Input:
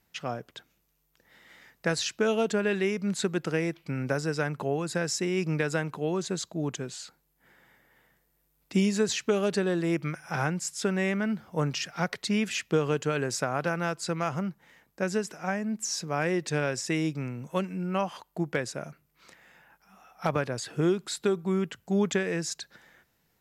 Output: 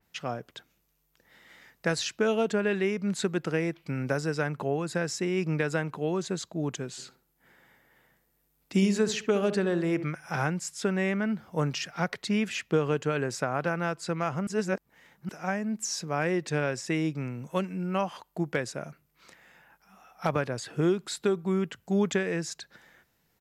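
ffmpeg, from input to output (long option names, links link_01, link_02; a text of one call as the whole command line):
ffmpeg -i in.wav -filter_complex "[0:a]asplit=3[link_01][link_02][link_03];[link_01]afade=type=out:start_time=6.97:duration=0.02[link_04];[link_02]asplit=2[link_05][link_06];[link_06]adelay=68,lowpass=frequency=1200:poles=1,volume=-10.5dB,asplit=2[link_07][link_08];[link_08]adelay=68,lowpass=frequency=1200:poles=1,volume=0.45,asplit=2[link_09][link_10];[link_10]adelay=68,lowpass=frequency=1200:poles=1,volume=0.45,asplit=2[link_11][link_12];[link_12]adelay=68,lowpass=frequency=1200:poles=1,volume=0.45,asplit=2[link_13][link_14];[link_14]adelay=68,lowpass=frequency=1200:poles=1,volume=0.45[link_15];[link_05][link_07][link_09][link_11][link_13][link_15]amix=inputs=6:normalize=0,afade=type=in:start_time=6.97:duration=0.02,afade=type=out:start_time=10.04:duration=0.02[link_16];[link_03]afade=type=in:start_time=10.04:duration=0.02[link_17];[link_04][link_16][link_17]amix=inputs=3:normalize=0,asplit=3[link_18][link_19][link_20];[link_18]atrim=end=14.472[link_21];[link_19]atrim=start=14.468:end=15.292,asetpts=PTS-STARTPTS,areverse[link_22];[link_20]atrim=start=15.288[link_23];[link_21][link_22]acrossfade=duration=0.004:curve1=hsin:curve2=hsin[link_24];[link_24][link_23]acrossfade=duration=0.004:curve1=hsin:curve2=hsin,adynamicequalizer=threshold=0.00562:dfrequency=3400:dqfactor=0.7:tfrequency=3400:tqfactor=0.7:attack=5:release=100:ratio=0.375:range=3:mode=cutabove:tftype=highshelf" out.wav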